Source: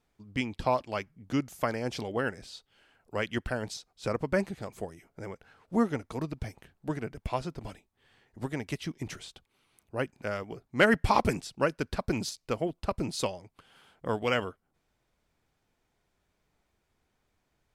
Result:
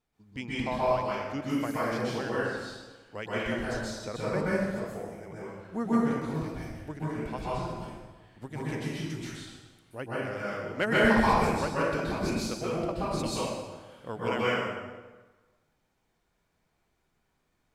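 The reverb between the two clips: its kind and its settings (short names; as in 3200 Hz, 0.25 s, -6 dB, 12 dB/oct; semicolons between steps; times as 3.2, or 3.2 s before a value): plate-style reverb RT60 1.3 s, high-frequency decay 0.75×, pre-delay 0.115 s, DRR -8.5 dB; gain -7.5 dB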